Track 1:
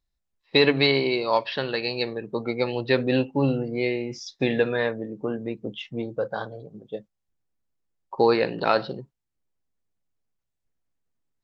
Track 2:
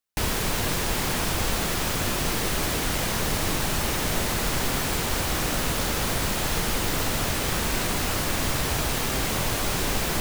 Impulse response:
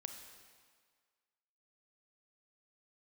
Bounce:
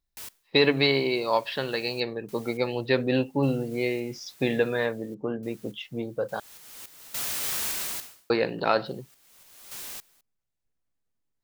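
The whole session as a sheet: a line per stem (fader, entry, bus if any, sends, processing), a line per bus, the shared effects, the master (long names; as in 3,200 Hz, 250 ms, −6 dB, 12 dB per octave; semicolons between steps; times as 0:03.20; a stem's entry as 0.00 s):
−2.0 dB, 0.00 s, muted 0:06.40–0:08.30, no send, no processing
0:07.81 −9 dB → 0:08.38 −16.5 dB, 0.00 s, no send, spectral tilt +3.5 dB per octave; sample-and-hold tremolo, depth 100%; automatic ducking −24 dB, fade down 0.25 s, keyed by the first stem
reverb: not used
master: no processing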